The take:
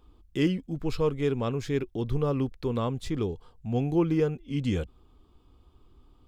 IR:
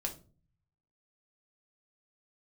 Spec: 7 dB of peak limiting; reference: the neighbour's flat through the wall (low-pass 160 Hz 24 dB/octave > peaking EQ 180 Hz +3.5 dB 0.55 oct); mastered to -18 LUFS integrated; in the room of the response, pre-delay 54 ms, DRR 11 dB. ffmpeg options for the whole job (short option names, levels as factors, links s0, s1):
-filter_complex "[0:a]alimiter=limit=0.0944:level=0:latency=1,asplit=2[s0][s1];[1:a]atrim=start_sample=2205,adelay=54[s2];[s1][s2]afir=irnorm=-1:irlink=0,volume=0.251[s3];[s0][s3]amix=inputs=2:normalize=0,lowpass=f=160:w=0.5412,lowpass=f=160:w=1.3066,equalizer=f=180:t=o:w=0.55:g=3.5,volume=7.5"